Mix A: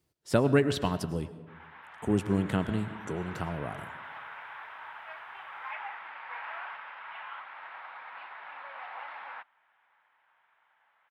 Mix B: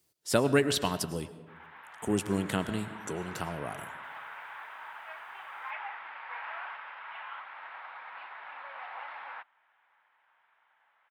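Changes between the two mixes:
speech: add high shelf 3900 Hz +11.5 dB; master: add low shelf 160 Hz -8 dB

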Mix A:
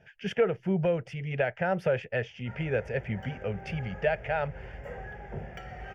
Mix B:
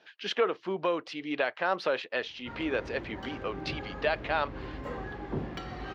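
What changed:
speech: add BPF 580–7800 Hz; master: remove fixed phaser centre 1100 Hz, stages 6

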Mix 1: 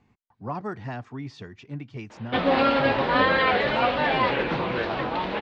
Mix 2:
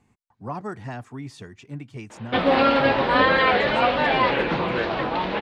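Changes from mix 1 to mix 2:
speech: remove LPF 5400 Hz 24 dB/oct; reverb: on, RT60 0.50 s

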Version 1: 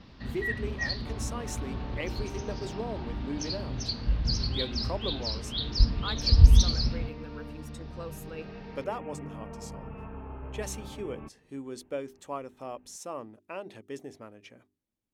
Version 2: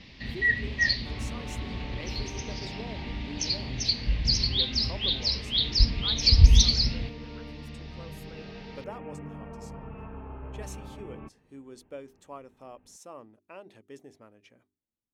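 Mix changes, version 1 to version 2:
speech -7.0 dB; first sound: add resonant high shelf 1700 Hz +6.5 dB, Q 3

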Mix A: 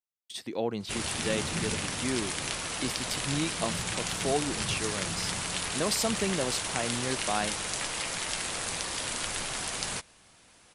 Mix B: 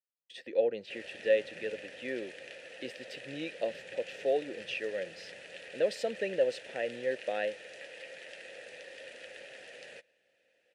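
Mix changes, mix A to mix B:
speech +9.5 dB; master: add vowel filter e

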